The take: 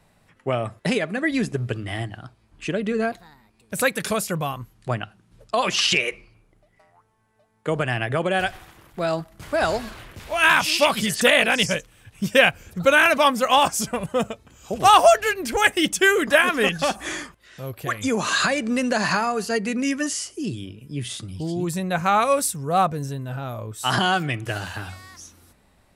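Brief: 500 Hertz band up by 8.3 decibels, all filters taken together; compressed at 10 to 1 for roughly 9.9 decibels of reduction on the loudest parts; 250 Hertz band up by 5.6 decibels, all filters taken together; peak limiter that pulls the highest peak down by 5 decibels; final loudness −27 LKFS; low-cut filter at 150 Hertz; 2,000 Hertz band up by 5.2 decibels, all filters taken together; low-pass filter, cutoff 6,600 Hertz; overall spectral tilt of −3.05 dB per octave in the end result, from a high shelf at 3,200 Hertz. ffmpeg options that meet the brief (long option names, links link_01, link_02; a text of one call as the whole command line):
ffmpeg -i in.wav -af "highpass=150,lowpass=6600,equalizer=frequency=250:width_type=o:gain=5,equalizer=frequency=500:width_type=o:gain=9,equalizer=frequency=2000:width_type=o:gain=7.5,highshelf=frequency=3200:gain=-4,acompressor=threshold=-13dB:ratio=10,volume=-5.5dB,alimiter=limit=-14.5dB:level=0:latency=1" out.wav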